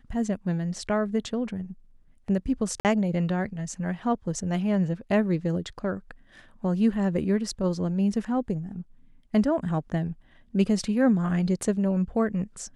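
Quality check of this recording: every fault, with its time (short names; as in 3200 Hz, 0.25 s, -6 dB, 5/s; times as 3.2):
2.8–2.85 gap 48 ms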